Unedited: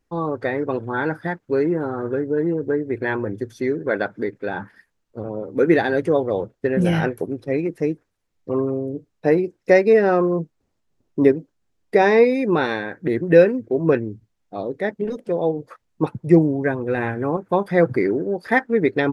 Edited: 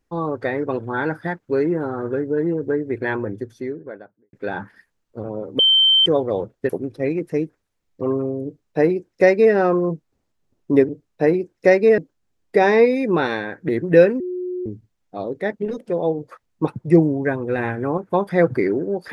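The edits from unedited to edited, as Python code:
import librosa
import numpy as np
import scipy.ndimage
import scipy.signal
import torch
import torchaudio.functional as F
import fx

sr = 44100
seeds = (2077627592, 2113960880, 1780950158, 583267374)

y = fx.studio_fade_out(x, sr, start_s=3.06, length_s=1.27)
y = fx.edit(y, sr, fx.bleep(start_s=5.59, length_s=0.47, hz=3110.0, db=-11.0),
    fx.cut(start_s=6.69, length_s=0.48),
    fx.duplicate(start_s=8.93, length_s=1.09, to_s=11.37),
    fx.bleep(start_s=13.59, length_s=0.46, hz=362.0, db=-23.5), tone=tone)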